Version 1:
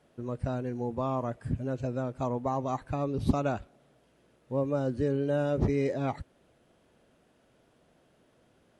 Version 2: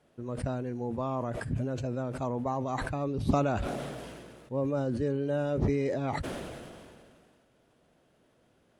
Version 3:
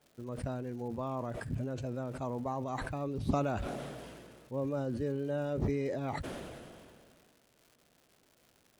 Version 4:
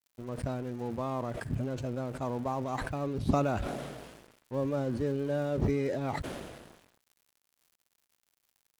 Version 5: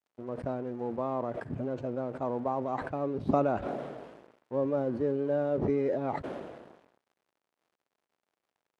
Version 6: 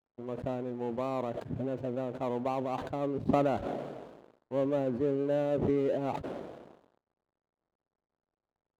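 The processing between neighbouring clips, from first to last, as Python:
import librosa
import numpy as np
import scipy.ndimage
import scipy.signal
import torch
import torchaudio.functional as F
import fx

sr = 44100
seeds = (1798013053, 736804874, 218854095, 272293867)

y1 = fx.sustainer(x, sr, db_per_s=27.0)
y1 = y1 * librosa.db_to_amplitude(-2.0)
y2 = fx.dmg_crackle(y1, sr, seeds[0], per_s=230.0, level_db=-46.0)
y2 = y2 * librosa.db_to_amplitude(-4.5)
y3 = np.sign(y2) * np.maximum(np.abs(y2) - 10.0 ** (-52.0 / 20.0), 0.0)
y3 = y3 * librosa.db_to_amplitude(4.0)
y4 = fx.bandpass_q(y3, sr, hz=530.0, q=0.65)
y4 = y4 * librosa.db_to_amplitude(3.5)
y5 = scipy.signal.medfilt(y4, 25)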